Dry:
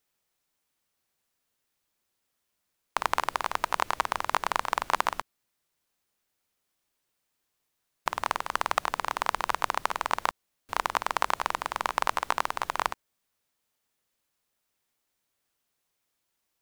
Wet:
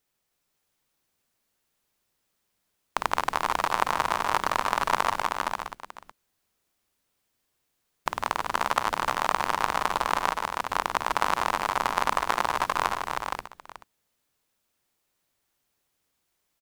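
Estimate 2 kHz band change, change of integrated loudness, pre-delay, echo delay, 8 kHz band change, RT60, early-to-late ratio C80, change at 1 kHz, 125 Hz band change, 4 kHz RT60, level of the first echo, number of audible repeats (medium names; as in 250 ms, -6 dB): +3.0 dB, +2.5 dB, no reverb, 149 ms, +2.5 dB, no reverb, no reverb, +3.0 dB, +7.0 dB, no reverb, -10.0 dB, 5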